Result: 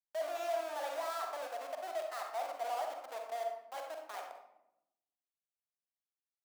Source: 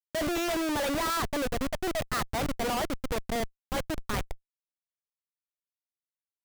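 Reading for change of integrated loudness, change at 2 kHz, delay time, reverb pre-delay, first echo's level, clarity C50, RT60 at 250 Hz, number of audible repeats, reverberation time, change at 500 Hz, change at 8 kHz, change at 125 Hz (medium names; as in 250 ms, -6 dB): -9.0 dB, -12.5 dB, no echo, 39 ms, no echo, 3.5 dB, 1.3 s, no echo, 0.85 s, -6.0 dB, -14.5 dB, under -40 dB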